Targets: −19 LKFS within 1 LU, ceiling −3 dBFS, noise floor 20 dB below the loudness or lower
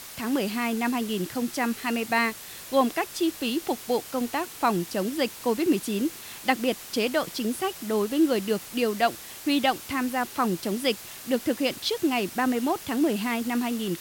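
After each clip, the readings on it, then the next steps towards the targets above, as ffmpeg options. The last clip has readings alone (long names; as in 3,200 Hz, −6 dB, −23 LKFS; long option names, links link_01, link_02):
background noise floor −42 dBFS; target noise floor −47 dBFS; integrated loudness −27.0 LKFS; sample peak −8.0 dBFS; target loudness −19.0 LKFS
→ -af "afftdn=noise_reduction=6:noise_floor=-42"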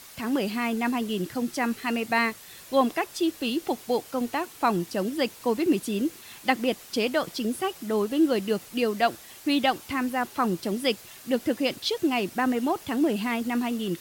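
background noise floor −47 dBFS; integrated loudness −27.0 LKFS; sample peak −8.0 dBFS; target loudness −19.0 LKFS
→ -af "volume=8dB,alimiter=limit=-3dB:level=0:latency=1"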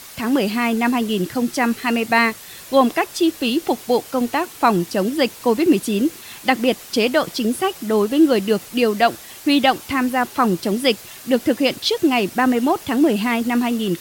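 integrated loudness −19.0 LKFS; sample peak −3.0 dBFS; background noise floor −39 dBFS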